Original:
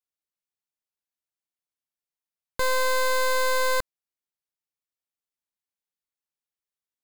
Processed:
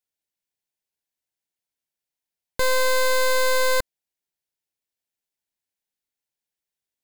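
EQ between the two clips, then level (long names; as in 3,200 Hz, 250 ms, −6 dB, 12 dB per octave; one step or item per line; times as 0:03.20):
parametric band 1,200 Hz −11.5 dB 0.29 octaves
+4.0 dB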